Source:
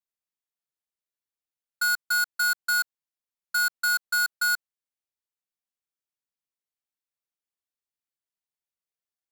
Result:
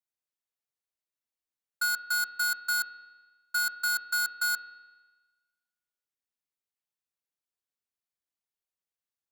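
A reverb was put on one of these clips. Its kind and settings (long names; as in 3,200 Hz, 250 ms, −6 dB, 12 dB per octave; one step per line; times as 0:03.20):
spring reverb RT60 1.3 s, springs 38 ms, chirp 40 ms, DRR 10.5 dB
level −3 dB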